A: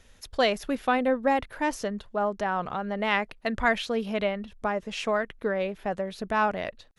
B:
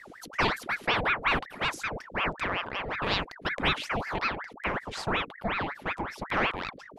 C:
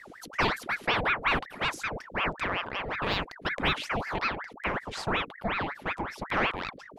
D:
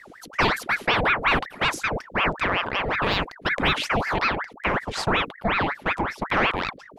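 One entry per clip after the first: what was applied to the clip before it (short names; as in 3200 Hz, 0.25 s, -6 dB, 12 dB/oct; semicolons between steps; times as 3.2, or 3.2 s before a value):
hum 50 Hz, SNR 18 dB; ring modulator with a swept carrier 1100 Hz, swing 80%, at 5.4 Hz
de-esser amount 70%
gate -37 dBFS, range -7 dB; in parallel at +2.5 dB: limiter -23 dBFS, peak gain reduction 11 dB; on the sum: gain +1.5 dB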